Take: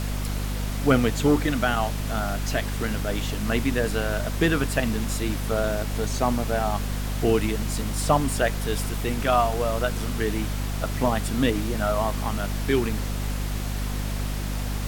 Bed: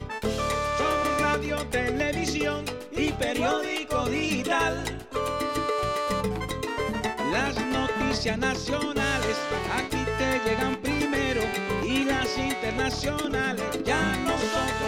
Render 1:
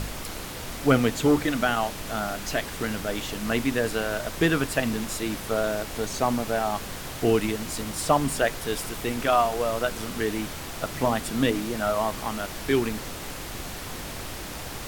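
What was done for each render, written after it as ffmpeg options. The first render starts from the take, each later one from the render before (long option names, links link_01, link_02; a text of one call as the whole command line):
ffmpeg -i in.wav -af "bandreject=frequency=50:width_type=h:width=4,bandreject=frequency=100:width_type=h:width=4,bandreject=frequency=150:width_type=h:width=4,bandreject=frequency=200:width_type=h:width=4,bandreject=frequency=250:width_type=h:width=4" out.wav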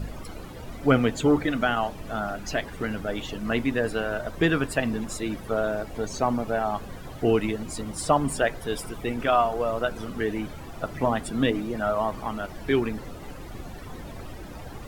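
ffmpeg -i in.wav -af "afftdn=noise_reduction=15:noise_floor=-36" out.wav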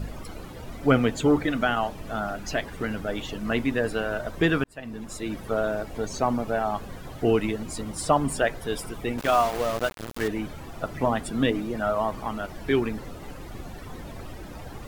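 ffmpeg -i in.wav -filter_complex "[0:a]asettb=1/sr,asplit=3[link_01][link_02][link_03];[link_01]atrim=end=9.184[link_04];[link_02]atrim=start=9.18:end=10.28,asetpts=PTS-STARTPTS,afade=type=in:duration=0.004:curve=qsin,afade=type=out:start_time=1.096:duration=0.004:curve=qsin,aeval=exprs='val(0)*gte(abs(val(0)),0.0355)':channel_layout=same[link_05];[link_03]atrim=start=10.276[link_06];[link_04][link_05]acrossfade=duration=0.004:curve1=hsin:curve2=qsin[link_07];[link_07][link_06]acrossfade=duration=0.004:curve1=qsin:curve2=hsin,asplit=2[link_08][link_09];[link_08]atrim=end=4.64,asetpts=PTS-STARTPTS,afade=type=out:start_time=4.636:duration=0.004:curve=hsin[link_10];[link_09]atrim=start=4.64,asetpts=PTS-STARTPTS,afade=type=in:duration=0.77[link_11];[link_10][link_11]concat=n=2:v=0:a=1" out.wav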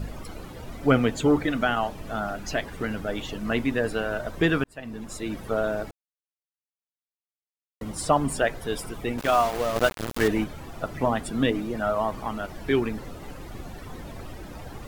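ffmpeg -i in.wav -filter_complex "[0:a]asplit=5[link_01][link_02][link_03][link_04][link_05];[link_01]atrim=end=5.91,asetpts=PTS-STARTPTS,afade=type=out:start_time=5.906:duration=0.004:curve=hsin[link_06];[link_02]atrim=start=5.91:end=7.81,asetpts=PTS-STARTPTS,volume=0[link_07];[link_03]atrim=start=7.81:end=9.762,asetpts=PTS-STARTPTS,afade=type=in:duration=0.004:curve=hsin[link_08];[link_04]atrim=start=9.758:end=10.442,asetpts=PTS-STARTPTS,volume=5dB[link_09];[link_05]atrim=start=10.438[link_10];[link_06][link_07][link_08]concat=n=3:v=0:a=1[link_11];[link_11][link_09]acrossfade=duration=0.004:curve1=hsin:curve2=hsin[link_12];[link_12][link_10]acrossfade=duration=0.004:curve1=hsin:curve2=hsin" out.wav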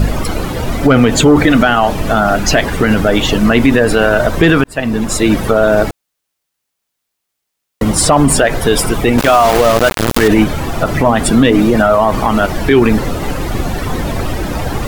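ffmpeg -i in.wav -af "acontrast=87,alimiter=level_in=14dB:limit=-1dB:release=50:level=0:latency=1" out.wav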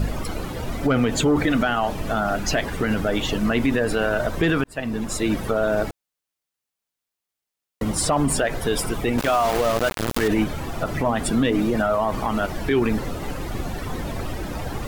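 ffmpeg -i in.wav -af "volume=-11dB" out.wav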